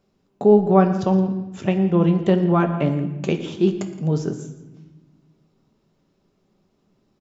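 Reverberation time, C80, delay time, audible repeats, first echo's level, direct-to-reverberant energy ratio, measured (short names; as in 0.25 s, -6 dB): 1.1 s, 11.0 dB, 0.117 s, 2, -18.0 dB, 5.0 dB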